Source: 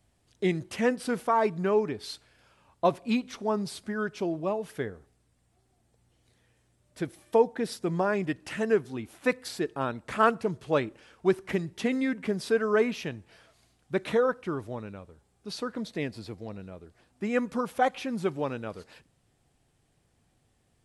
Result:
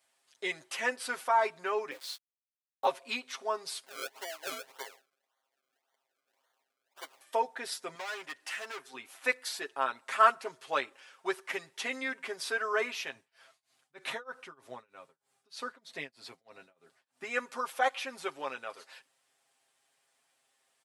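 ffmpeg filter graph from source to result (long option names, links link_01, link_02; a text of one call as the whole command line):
ffmpeg -i in.wav -filter_complex "[0:a]asettb=1/sr,asplit=3[link_01][link_02][link_03];[link_01]atrim=end=1.914[link_04];[link_02]atrim=start=1.91:end=2.87,asetpts=PTS-STARTPTS,afade=type=in:duration=0.004:curve=qsin,afade=type=out:start_time=0.956:duration=0.004:curve=qsin,aeval=exprs='val(0)*gte(abs(val(0)),0.00668)':channel_layout=same,asplit=2[link_05][link_06];[link_06]adelay=15,volume=-10dB[link_07];[link_05][link_07]amix=inputs=2:normalize=0,atrim=end_sample=42336,aeval=exprs='val(0)*sin(2*PI*110*n/s)':channel_layout=same[link_08];[link_03]atrim=start=2.866[link_09];[link_04][link_08]acrossfade=duration=0.004:curve1=hsin:curve2=qsin[link_10];[link_10][link_09]acrossfade=duration=0.004:curve1=qsin:curve2=hsin,asettb=1/sr,asplit=3[link_11][link_12][link_13];[link_11]atrim=end=3.854[link_14];[link_12]atrim=start=3.85:end=7.21,asetpts=PTS-STARTPTS,afade=type=in:duration=0.004:curve=qsin,afade=type=out:start_time=3.356:duration=0.004:curve=qsin,highpass=590,equalizer=frequency=3000:width_type=o:width=1.3:gain=-9,acrusher=samples=33:mix=1:aa=0.000001:lfo=1:lforange=33:lforate=1.8[link_15];[link_13]atrim=start=7.206[link_16];[link_14][link_15]acrossfade=duration=0.004:curve1=hsin:curve2=qsin[link_17];[link_17][link_16]acrossfade=duration=0.004:curve1=qsin:curve2=hsin,asettb=1/sr,asplit=3[link_18][link_19][link_20];[link_18]atrim=end=7.954[link_21];[link_19]atrim=start=7.95:end=8.94,asetpts=PTS-STARTPTS,afade=type=in:duration=0.004:curve=qsin,afade=type=out:start_time=0.986:duration=0.004:curve=qsin,lowshelf=frequency=330:gain=-8.5,acompressor=mode=upward:threshold=-49dB:ratio=2.5:attack=3.2:release=140:knee=2.83:detection=peak,asoftclip=type=hard:threshold=-33.5dB[link_22];[link_20]atrim=start=8.936[link_23];[link_21][link_22]acrossfade=duration=0.004:curve1=hsin:curve2=qsin[link_24];[link_24][link_23]acrossfade=duration=0.004:curve1=qsin:curve2=hsin,asettb=1/sr,asplit=3[link_25][link_26][link_27];[link_25]atrim=end=13.154[link_28];[link_26]atrim=start=13.15:end=17.24,asetpts=PTS-STARTPTS,afade=type=in:duration=0.004:curve=qsin,afade=type=out:start_time=4.086:duration=0.004:curve=qsin,equalizer=frequency=150:width=1.1:gain=11.5,tremolo=f=3.2:d=0.97[link_29];[link_27]atrim=start=17.236[link_30];[link_28][link_29]acrossfade=duration=0.004:curve1=hsin:curve2=qsin[link_31];[link_31][link_30]acrossfade=duration=0.004:curve1=qsin:curve2=hsin,highpass=860,aecho=1:1:7.5:0.75" out.wav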